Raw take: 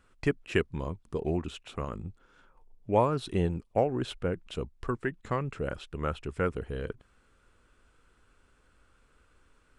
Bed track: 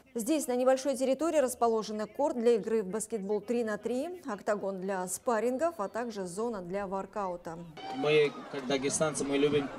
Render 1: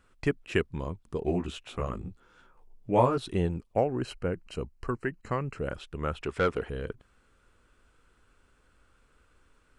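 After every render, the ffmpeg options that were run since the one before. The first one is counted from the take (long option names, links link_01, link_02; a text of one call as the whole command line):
ffmpeg -i in.wav -filter_complex "[0:a]asettb=1/sr,asplit=3[link_01][link_02][link_03];[link_01]atrim=end=1.254[link_04];[link_02]atrim=start=1.25:end=3.18,asetpts=PTS-STARTPTS,afade=type=in:duration=0.004:curve=qsin,afade=type=out:start_time=1.926:duration=0.004:curve=qsin,asplit=2[link_05][link_06];[link_06]adelay=16,volume=-2dB[link_07];[link_05][link_07]amix=inputs=2:normalize=0,atrim=end_sample=85113[link_08];[link_03]atrim=start=3.176[link_09];[link_04][link_08]acrossfade=duration=0.004:curve1=hsin:curve2=qsin[link_10];[link_10][link_09]acrossfade=duration=0.004:curve1=qsin:curve2=hsin,asettb=1/sr,asplit=3[link_11][link_12][link_13];[link_11]atrim=end=3.784[link_14];[link_12]atrim=start=3.78:end=5.58,asetpts=PTS-STARTPTS,afade=type=in:duration=0.004:curve=qsin,afade=type=out:start_time=1.796:duration=0.004:curve=qsin,asuperstop=centerf=3500:order=8:qfactor=4.8[link_15];[link_13]atrim=start=5.576[link_16];[link_14][link_15]acrossfade=duration=0.004:curve1=hsin:curve2=qsin[link_17];[link_17][link_16]acrossfade=duration=0.004:curve1=qsin:curve2=hsin,asettb=1/sr,asplit=3[link_18][link_19][link_20];[link_18]atrim=end=6.214[link_21];[link_19]atrim=start=6.21:end=6.7,asetpts=PTS-STARTPTS,afade=type=in:duration=0.004:curve=qsin,afade=type=out:start_time=0.486:duration=0.004:curve=qsin,asplit=2[link_22][link_23];[link_23]highpass=frequency=720:poles=1,volume=17dB,asoftclip=type=tanh:threshold=-16dB[link_24];[link_22][link_24]amix=inputs=2:normalize=0,lowpass=frequency=3100:poles=1,volume=-6dB[link_25];[link_20]atrim=start=6.696[link_26];[link_21][link_25]acrossfade=duration=0.004:curve1=hsin:curve2=qsin[link_27];[link_27][link_26]acrossfade=duration=0.004:curve1=qsin:curve2=hsin" out.wav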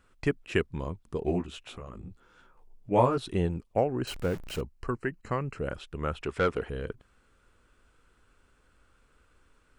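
ffmpeg -i in.wav -filter_complex "[0:a]asplit=3[link_01][link_02][link_03];[link_01]afade=type=out:start_time=1.42:duration=0.02[link_04];[link_02]acompressor=threshold=-38dB:ratio=6:attack=3.2:release=140:knee=1:detection=peak,afade=type=in:start_time=1.42:duration=0.02,afade=type=out:start_time=2.9:duration=0.02[link_05];[link_03]afade=type=in:start_time=2.9:duration=0.02[link_06];[link_04][link_05][link_06]amix=inputs=3:normalize=0,asettb=1/sr,asplit=3[link_07][link_08][link_09];[link_07]atrim=end=4.074[link_10];[link_08]atrim=start=4.07:end=4.61,asetpts=PTS-STARTPTS,afade=type=in:duration=0.004:curve=qsin,afade=type=out:start_time=0.536:duration=0.004:curve=qsin,aeval=exprs='val(0)+0.5*0.0141*sgn(val(0))':channel_layout=same[link_11];[link_09]atrim=start=4.606[link_12];[link_10][link_11]acrossfade=duration=0.004:curve1=hsin:curve2=qsin[link_13];[link_13][link_12]acrossfade=duration=0.004:curve1=qsin:curve2=hsin" out.wav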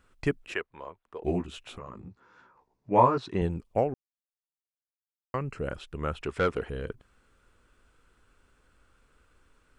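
ffmpeg -i in.wav -filter_complex "[0:a]asettb=1/sr,asplit=3[link_01][link_02][link_03];[link_01]atrim=end=0.544[link_04];[link_02]atrim=start=0.54:end=1.23,asetpts=PTS-STARTPTS,afade=type=in:duration=0.004:curve=qsin,afade=type=out:start_time=0.686:duration=0.004:curve=qsin,acrossover=split=480 3000:gain=0.0708 1 0.126[link_05][link_06][link_07];[link_05][link_06][link_07]amix=inputs=3:normalize=0[link_08];[link_03]atrim=start=1.226[link_09];[link_04][link_08]acrossfade=duration=0.004:curve1=hsin:curve2=qsin[link_10];[link_10][link_09]acrossfade=duration=0.004:curve1=qsin:curve2=hsin,asettb=1/sr,asplit=3[link_11][link_12][link_13];[link_11]atrim=end=1.794[link_14];[link_12]atrim=start=1.79:end=3.42,asetpts=PTS-STARTPTS,afade=type=in:duration=0.004:curve=qsin,afade=type=out:start_time=1.626:duration=0.004:curve=qsin,highpass=100,equalizer=frequency=990:width_type=q:width=4:gain=8,equalizer=frequency=1800:width_type=q:width=4:gain=4,equalizer=frequency=3200:width_type=q:width=4:gain=-7,lowpass=frequency=6300:width=0.5412,lowpass=frequency=6300:width=1.3066[link_15];[link_13]atrim=start=3.416[link_16];[link_14][link_15]acrossfade=duration=0.004:curve1=hsin:curve2=qsin[link_17];[link_17][link_16]acrossfade=duration=0.004:curve1=qsin:curve2=hsin,asplit=3[link_18][link_19][link_20];[link_18]atrim=end=3.94,asetpts=PTS-STARTPTS,afade=type=out:start_time=3.936:duration=0.004:curve=hsin[link_21];[link_19]atrim=start=3.94:end=5.34,asetpts=PTS-STARTPTS,volume=0[link_22];[link_20]atrim=start=5.34,asetpts=PTS-STARTPTS,afade=type=in:duration=0.004:curve=hsin[link_23];[link_21][link_22][link_23]concat=n=3:v=0:a=1" out.wav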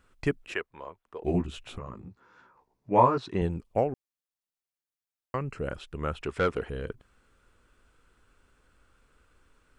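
ffmpeg -i in.wav -filter_complex "[0:a]asettb=1/sr,asplit=3[link_01][link_02][link_03];[link_01]atrim=end=1.344[link_04];[link_02]atrim=start=1.34:end=1.95,asetpts=PTS-STARTPTS,afade=type=in:duration=0.004:curve=qsin,afade=type=out:start_time=0.606:duration=0.004:curve=qsin,lowshelf=frequency=190:gain=8.5[link_05];[link_03]atrim=start=1.946[link_06];[link_04][link_05]acrossfade=duration=0.004:curve1=hsin:curve2=qsin[link_07];[link_07][link_06]acrossfade=duration=0.004:curve1=qsin:curve2=hsin" out.wav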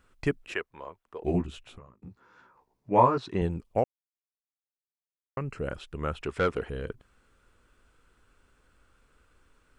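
ffmpeg -i in.wav -filter_complex "[0:a]asplit=4[link_01][link_02][link_03][link_04];[link_01]atrim=end=2.02,asetpts=PTS-STARTPTS,afade=type=out:start_time=1.36:duration=0.66[link_05];[link_02]atrim=start=2.02:end=3.84,asetpts=PTS-STARTPTS,afade=type=in:duration=0.004:curve=hsin,afade=type=out:start_time=1.816:duration=0.004:curve=hsin[link_06];[link_03]atrim=start=3.84:end=5.37,asetpts=PTS-STARTPTS,volume=0[link_07];[link_04]atrim=start=5.37,asetpts=PTS-STARTPTS,afade=type=in:duration=0.004:curve=hsin[link_08];[link_05][link_06][link_07][link_08]concat=n=4:v=0:a=1" out.wav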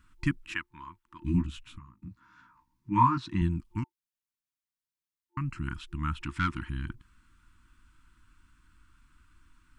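ffmpeg -i in.wav -af "lowshelf=frequency=140:gain=5,afftfilt=real='re*(1-between(b*sr/4096,350,890))':imag='im*(1-between(b*sr/4096,350,890))':win_size=4096:overlap=0.75" out.wav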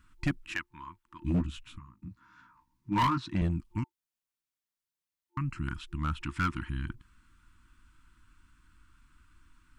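ffmpeg -i in.wav -af "asoftclip=type=hard:threshold=-22.5dB" out.wav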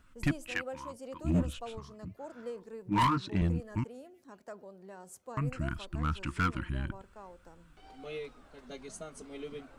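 ffmpeg -i in.wav -i bed.wav -filter_complex "[1:a]volume=-15.5dB[link_01];[0:a][link_01]amix=inputs=2:normalize=0" out.wav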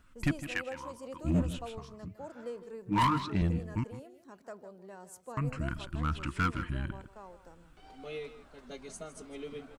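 ffmpeg -i in.wav -af "aecho=1:1:158:0.211" out.wav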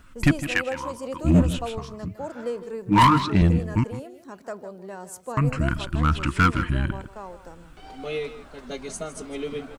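ffmpeg -i in.wav -af "volume=11dB" out.wav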